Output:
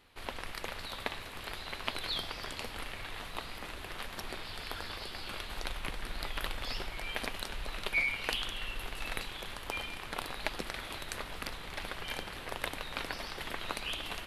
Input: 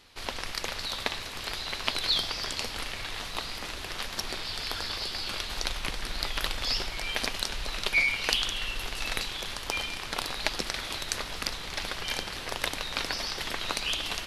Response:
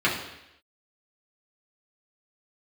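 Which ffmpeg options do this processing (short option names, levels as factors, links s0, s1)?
-af "equalizer=f=5600:w=1.1:g=-11,volume=0.631"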